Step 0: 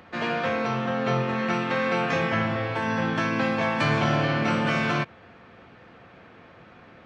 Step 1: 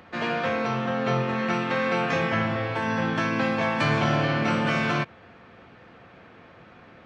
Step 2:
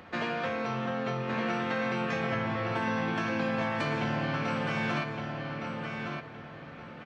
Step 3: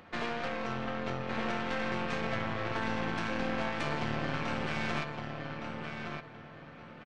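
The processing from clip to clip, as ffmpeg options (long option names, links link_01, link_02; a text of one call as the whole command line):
ffmpeg -i in.wav -af anull out.wav
ffmpeg -i in.wav -filter_complex "[0:a]acompressor=threshold=-29dB:ratio=6,asplit=2[link_01][link_02];[link_02]adelay=1164,lowpass=frequency=4800:poles=1,volume=-4.5dB,asplit=2[link_03][link_04];[link_04]adelay=1164,lowpass=frequency=4800:poles=1,volume=0.29,asplit=2[link_05][link_06];[link_06]adelay=1164,lowpass=frequency=4800:poles=1,volume=0.29,asplit=2[link_07][link_08];[link_08]adelay=1164,lowpass=frequency=4800:poles=1,volume=0.29[link_09];[link_01][link_03][link_05][link_07][link_09]amix=inputs=5:normalize=0" out.wav
ffmpeg -i in.wav -af "aeval=exprs='0.141*(cos(1*acos(clip(val(0)/0.141,-1,1)))-cos(1*PI/2))+0.0316*(cos(4*acos(clip(val(0)/0.141,-1,1)))-cos(4*PI/2))+0.00631*(cos(8*acos(clip(val(0)/0.141,-1,1)))-cos(8*PI/2))':channel_layout=same,aresample=22050,aresample=44100,volume=-4.5dB" out.wav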